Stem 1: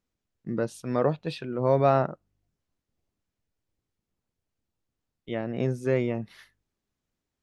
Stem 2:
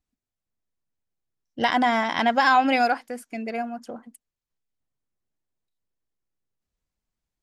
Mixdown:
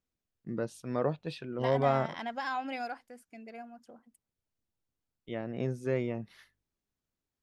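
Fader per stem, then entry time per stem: −6.0, −16.5 decibels; 0.00, 0.00 seconds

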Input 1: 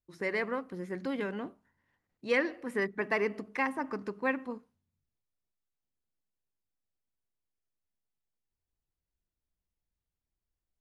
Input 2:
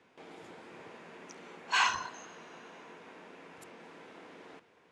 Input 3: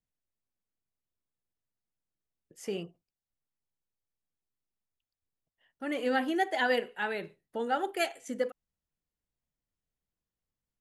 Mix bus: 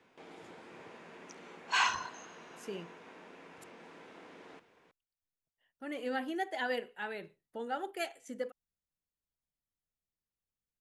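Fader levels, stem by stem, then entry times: muted, −1.5 dB, −7.0 dB; muted, 0.00 s, 0.00 s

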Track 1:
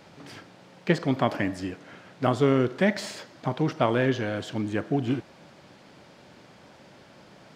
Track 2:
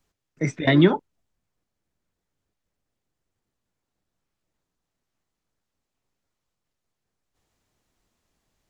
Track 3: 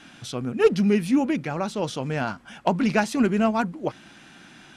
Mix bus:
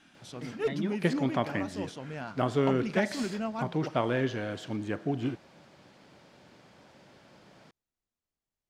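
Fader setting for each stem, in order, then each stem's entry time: −5.0, −19.5, −12.5 decibels; 0.15, 0.00, 0.00 seconds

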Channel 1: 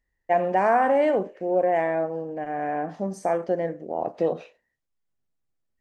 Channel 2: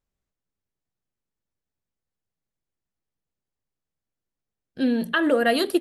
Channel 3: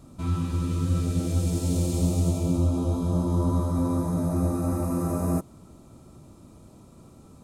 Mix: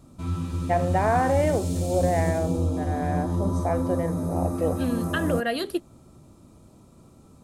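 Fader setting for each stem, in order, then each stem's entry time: −2.5, −6.0, −2.0 decibels; 0.40, 0.00, 0.00 seconds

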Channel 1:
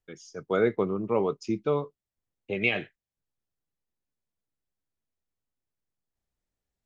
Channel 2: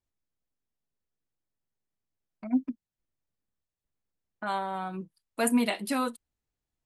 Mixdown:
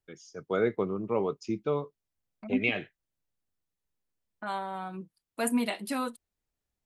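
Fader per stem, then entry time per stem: −3.0, −3.0 decibels; 0.00, 0.00 seconds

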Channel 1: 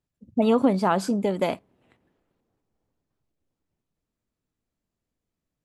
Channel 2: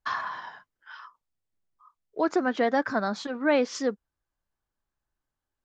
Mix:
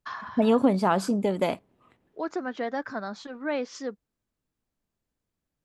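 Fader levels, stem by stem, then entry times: −1.0, −6.5 decibels; 0.00, 0.00 seconds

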